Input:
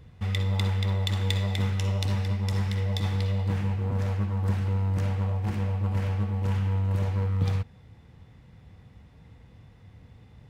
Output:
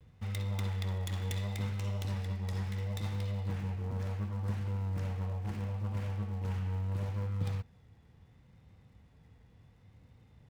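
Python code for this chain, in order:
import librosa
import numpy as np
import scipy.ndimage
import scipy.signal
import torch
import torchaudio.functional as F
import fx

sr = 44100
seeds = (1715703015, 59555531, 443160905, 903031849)

y = fx.dead_time(x, sr, dead_ms=0.11)
y = fx.vibrato(y, sr, rate_hz=0.72, depth_cents=53.0)
y = y * librosa.db_to_amplitude(-8.5)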